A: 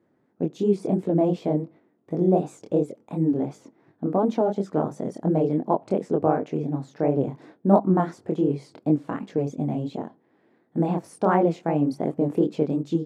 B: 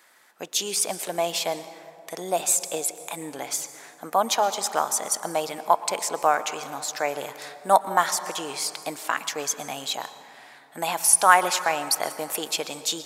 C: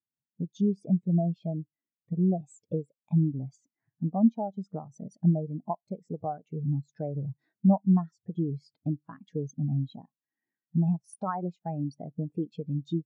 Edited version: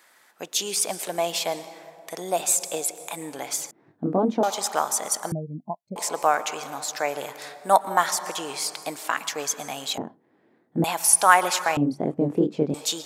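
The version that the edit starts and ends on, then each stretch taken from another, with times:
B
0:03.71–0:04.43: punch in from A
0:05.32–0:05.96: punch in from C
0:09.98–0:10.84: punch in from A
0:11.77–0:12.74: punch in from A

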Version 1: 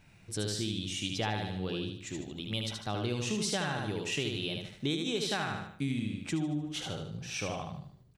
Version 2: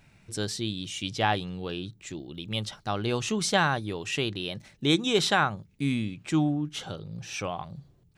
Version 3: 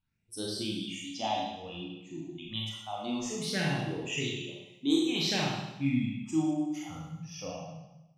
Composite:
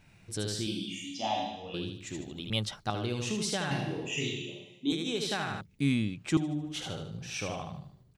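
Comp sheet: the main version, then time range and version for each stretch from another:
1
0:00.67–0:01.74: punch in from 3
0:02.50–0:02.90: punch in from 2
0:03.71–0:04.92: punch in from 3
0:05.61–0:06.37: punch in from 2

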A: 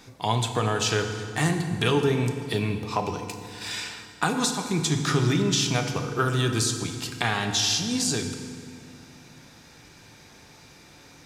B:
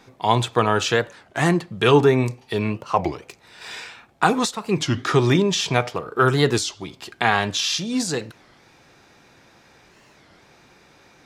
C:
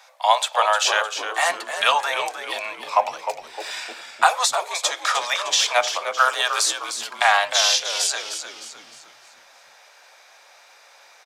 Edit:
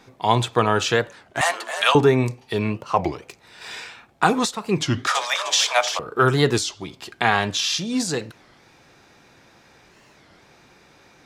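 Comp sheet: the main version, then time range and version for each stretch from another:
B
0:01.41–0:01.95: punch in from C
0:05.07–0:05.99: punch in from C
not used: A

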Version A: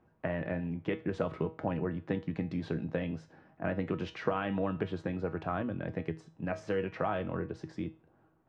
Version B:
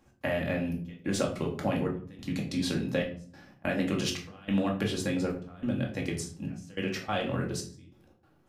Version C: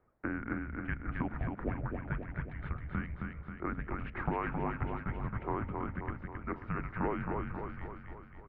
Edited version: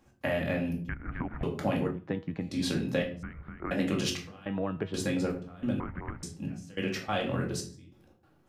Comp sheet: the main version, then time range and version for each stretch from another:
B
0:00.89–0:01.43: punch in from C
0:01.98–0:02.51: punch in from A, crossfade 0.24 s
0:03.23–0:03.71: punch in from C
0:04.46–0:04.94: punch in from A
0:05.80–0:06.23: punch in from C

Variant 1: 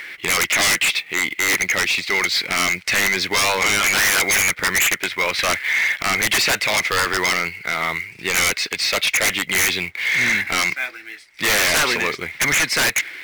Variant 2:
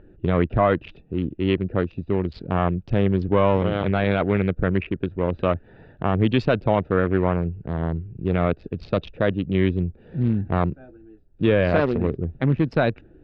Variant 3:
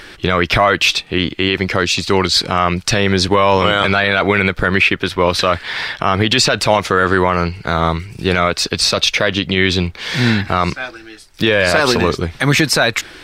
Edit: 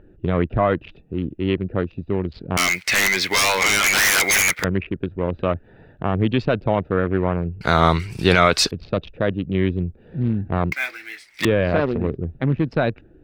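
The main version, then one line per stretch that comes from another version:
2
0:02.57–0:04.64: punch in from 1
0:07.61–0:08.71: punch in from 3
0:10.72–0:11.45: punch in from 1

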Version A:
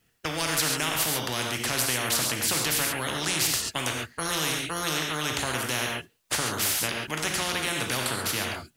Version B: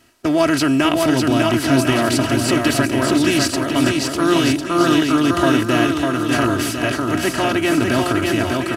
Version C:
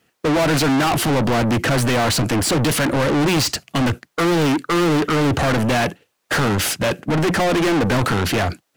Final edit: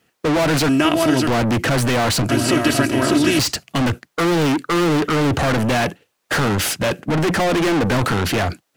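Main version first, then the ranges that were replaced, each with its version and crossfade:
C
0:00.69–0:01.27: punch in from B
0:02.29–0:03.39: punch in from B
not used: A

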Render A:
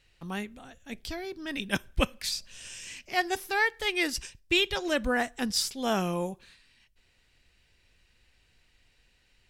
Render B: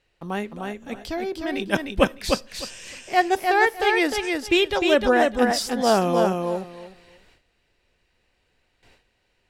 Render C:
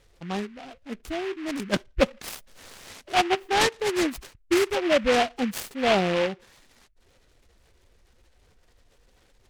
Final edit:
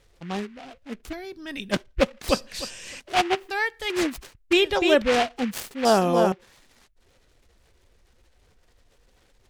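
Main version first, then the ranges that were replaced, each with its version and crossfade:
C
0:01.13–0:01.71: punch in from A
0:02.29–0:03.00: punch in from B
0:03.50–0:03.90: punch in from A
0:04.53–0:05.02: punch in from B
0:05.85–0:06.32: punch in from B

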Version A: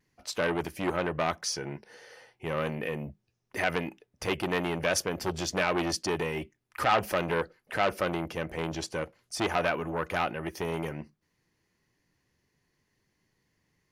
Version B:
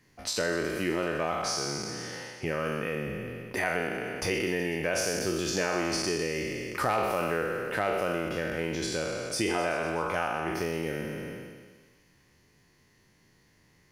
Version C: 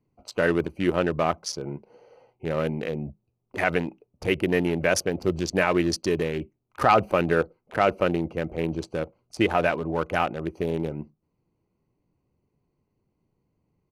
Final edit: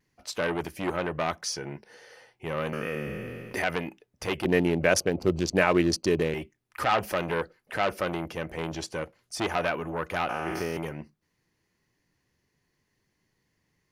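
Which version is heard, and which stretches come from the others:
A
0:02.73–0:03.62: punch in from B
0:04.45–0:06.34: punch in from C
0:10.29–0:10.77: punch in from B

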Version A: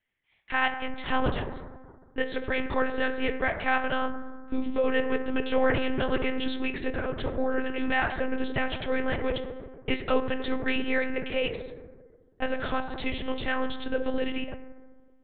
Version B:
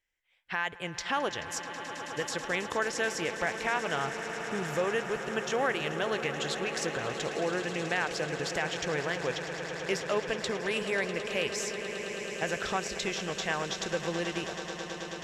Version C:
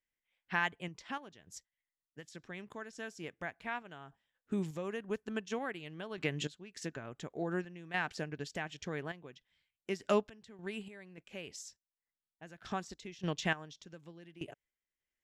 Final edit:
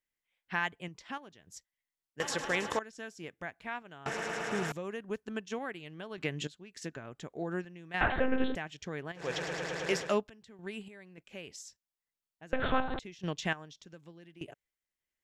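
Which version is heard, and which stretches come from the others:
C
0:02.20–0:02.79: punch in from B
0:04.06–0:04.72: punch in from B
0:08.01–0:08.55: punch in from A
0:09.26–0:10.08: punch in from B, crossfade 0.24 s
0:12.53–0:12.99: punch in from A

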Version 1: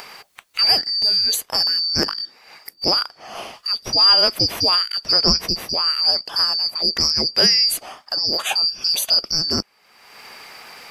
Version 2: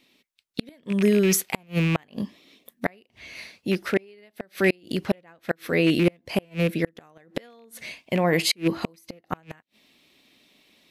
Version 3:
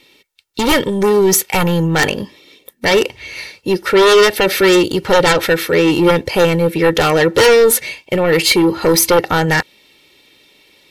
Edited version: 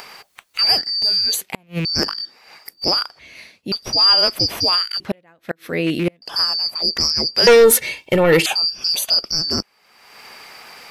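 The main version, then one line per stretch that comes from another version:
1
0:01.41–0:01.85: punch in from 2
0:03.19–0:03.72: punch in from 2
0:05.00–0:06.22: punch in from 2
0:07.47–0:08.46: punch in from 3

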